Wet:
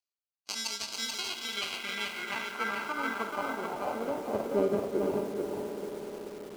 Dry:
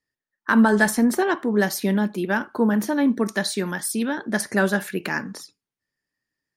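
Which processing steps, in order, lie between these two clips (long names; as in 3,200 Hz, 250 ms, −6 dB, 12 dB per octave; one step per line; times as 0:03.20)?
gain on one half-wave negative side −3 dB
echo that builds up and dies away 98 ms, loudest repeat 5, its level −17 dB
reversed playback
upward compression, threshold −31 dBFS
reversed playback
sample-rate reduction 1,800 Hz, jitter 0%
band-pass filter sweep 5,200 Hz → 450 Hz, 0:00.79–0:04.53
on a send at −10.5 dB: convolution reverb RT60 0.35 s, pre-delay 52 ms
on the sum: feedback echo at a low word length 435 ms, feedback 35%, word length 8 bits, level −3 dB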